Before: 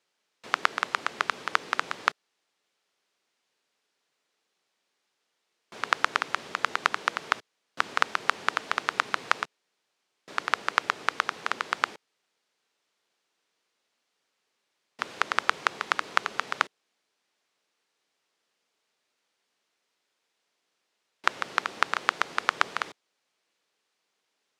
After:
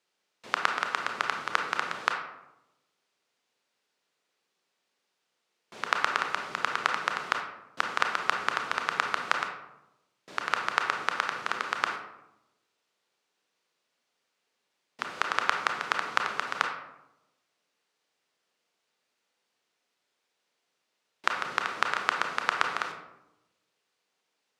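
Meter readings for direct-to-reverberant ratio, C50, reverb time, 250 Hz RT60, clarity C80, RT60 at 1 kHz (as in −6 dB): 3.0 dB, 5.5 dB, 0.90 s, 1.1 s, 9.0 dB, 0.85 s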